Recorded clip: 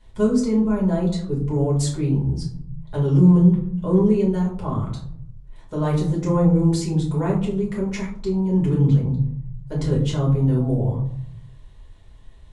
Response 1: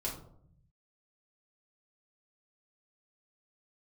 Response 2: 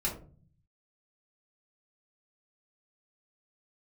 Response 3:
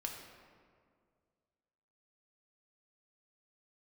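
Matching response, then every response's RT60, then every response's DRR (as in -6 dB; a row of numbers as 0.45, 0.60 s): 1; 0.65, 0.40, 2.1 s; -5.5, -4.5, 0.5 dB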